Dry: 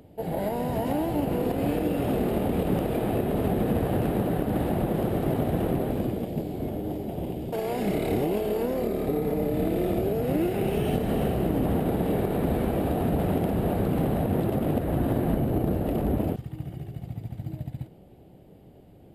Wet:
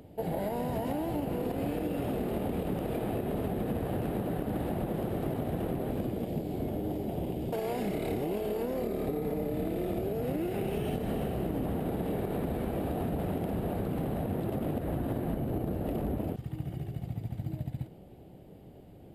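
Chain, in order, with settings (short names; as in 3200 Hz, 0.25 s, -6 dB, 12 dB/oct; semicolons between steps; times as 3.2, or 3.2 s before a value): compressor, threshold -29 dBFS, peak gain reduction 9 dB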